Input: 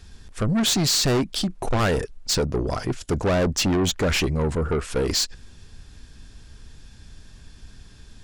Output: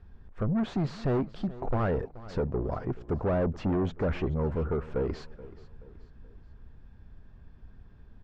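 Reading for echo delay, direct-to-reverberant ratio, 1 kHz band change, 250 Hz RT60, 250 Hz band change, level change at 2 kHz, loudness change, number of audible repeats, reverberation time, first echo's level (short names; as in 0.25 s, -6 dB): 0.428 s, none, -7.0 dB, none, -6.0 dB, -13.5 dB, -8.0 dB, 3, none, -18.0 dB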